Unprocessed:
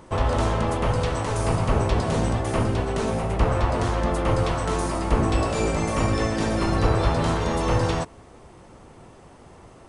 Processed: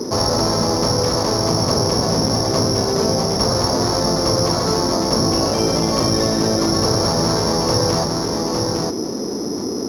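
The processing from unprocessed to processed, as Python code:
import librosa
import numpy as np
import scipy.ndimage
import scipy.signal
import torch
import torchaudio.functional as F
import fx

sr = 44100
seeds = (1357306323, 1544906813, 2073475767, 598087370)

p1 = fx.octave_divider(x, sr, octaves=2, level_db=-2.0)
p2 = p1 + fx.echo_single(p1, sr, ms=859, db=-9.5, dry=0)
p3 = fx.dmg_noise_band(p2, sr, seeds[0], low_hz=200.0, high_hz=460.0, level_db=-40.0)
p4 = fx.high_shelf(p3, sr, hz=2100.0, db=-8.0)
p5 = (np.kron(scipy.signal.resample_poly(p4, 1, 8), np.eye(8)[0]) * 8)[:len(p4)]
p6 = fx.rider(p5, sr, range_db=5, speed_s=0.5)
p7 = p5 + F.gain(torch.from_numpy(p6), -1.0).numpy()
p8 = scipy.signal.sosfilt(scipy.signal.butter(2, 150.0, 'highpass', fs=sr, output='sos'), p7)
p9 = fx.spacing_loss(p8, sr, db_at_10k=27)
y = fx.env_flatten(p9, sr, amount_pct=50)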